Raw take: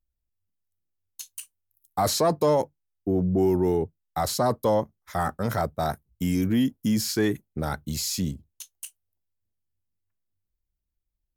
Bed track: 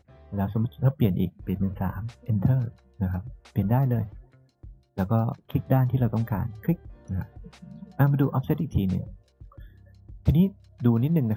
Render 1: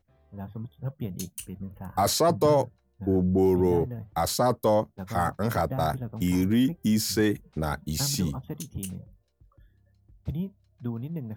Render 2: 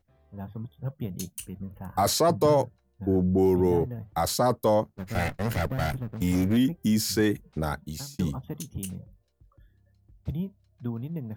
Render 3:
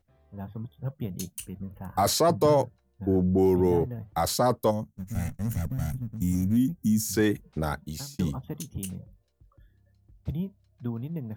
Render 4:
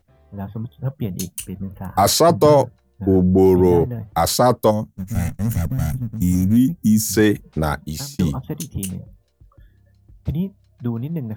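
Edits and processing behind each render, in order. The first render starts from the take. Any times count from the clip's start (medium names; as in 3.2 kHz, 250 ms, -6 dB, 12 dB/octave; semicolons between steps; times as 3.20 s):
add bed track -11.5 dB
4.86–6.57 s: comb filter that takes the minimum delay 0.44 ms; 7.66–8.19 s: fade out linear
4.71–7.13 s: time-frequency box 260–5500 Hz -14 dB
trim +8.5 dB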